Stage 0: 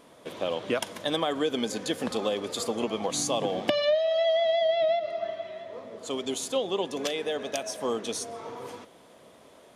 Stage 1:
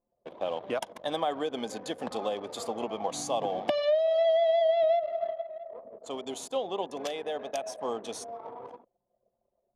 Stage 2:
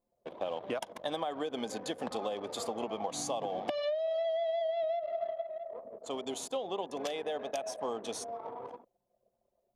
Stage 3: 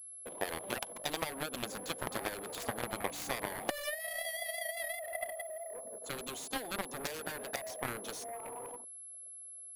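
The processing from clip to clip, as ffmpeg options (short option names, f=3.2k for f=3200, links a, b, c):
-af "anlmdn=0.631,equalizer=f=770:w=1.5:g=10,volume=-7.5dB"
-af "acompressor=threshold=-31dB:ratio=6"
-af "aeval=exprs='val(0)+0.00501*sin(2*PI*11000*n/s)':c=same,aeval=exprs='0.112*(cos(1*acos(clip(val(0)/0.112,-1,1)))-cos(1*PI/2))+0.0316*(cos(7*acos(clip(val(0)/0.112,-1,1)))-cos(7*PI/2))':c=same"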